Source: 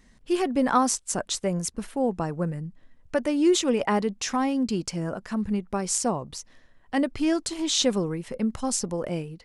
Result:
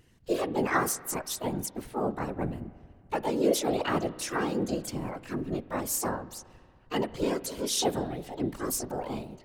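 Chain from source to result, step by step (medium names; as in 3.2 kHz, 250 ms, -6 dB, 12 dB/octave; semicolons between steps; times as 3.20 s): dynamic bell 8.9 kHz, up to +4 dB, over -47 dBFS, Q 5; harmony voices +7 st -1 dB; whisper effect; spring tank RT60 2.1 s, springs 32/46 ms, chirp 40 ms, DRR 16.5 dB; trim -7.5 dB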